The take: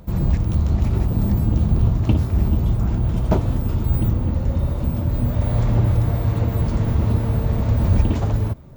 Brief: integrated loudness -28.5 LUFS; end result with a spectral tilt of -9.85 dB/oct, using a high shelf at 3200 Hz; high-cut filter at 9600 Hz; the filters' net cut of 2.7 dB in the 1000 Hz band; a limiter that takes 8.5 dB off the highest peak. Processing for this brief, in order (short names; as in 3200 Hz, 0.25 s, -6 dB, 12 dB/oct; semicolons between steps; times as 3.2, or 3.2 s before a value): LPF 9600 Hz; bell 1000 Hz -4 dB; high shelf 3200 Hz +5 dB; gain -5.5 dB; limiter -19 dBFS